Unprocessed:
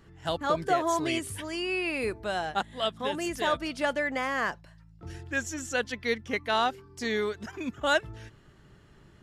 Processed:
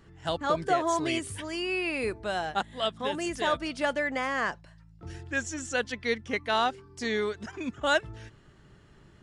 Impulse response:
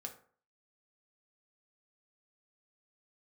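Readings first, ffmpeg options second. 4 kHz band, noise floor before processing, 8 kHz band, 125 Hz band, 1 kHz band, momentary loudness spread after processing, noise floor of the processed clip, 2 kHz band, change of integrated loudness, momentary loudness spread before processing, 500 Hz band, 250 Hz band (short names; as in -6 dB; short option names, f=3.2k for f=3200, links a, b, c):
0.0 dB, -56 dBFS, 0.0 dB, 0.0 dB, 0.0 dB, 9 LU, -56 dBFS, 0.0 dB, 0.0 dB, 9 LU, 0.0 dB, 0.0 dB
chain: -af "aresample=22050,aresample=44100"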